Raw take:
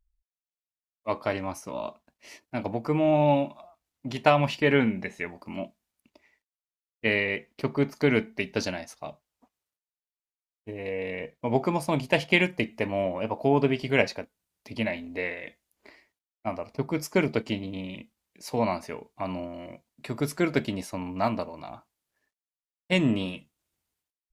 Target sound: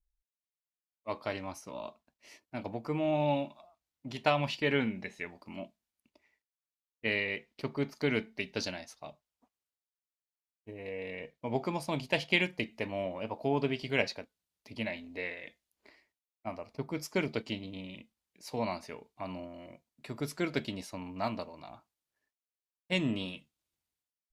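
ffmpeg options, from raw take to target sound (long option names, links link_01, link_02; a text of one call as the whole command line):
ffmpeg -i in.wav -af "adynamicequalizer=threshold=0.00501:dfrequency=4000:dqfactor=1.1:tfrequency=4000:tqfactor=1.1:attack=5:release=100:ratio=0.375:range=3.5:mode=boostabove:tftype=bell,volume=-8dB" out.wav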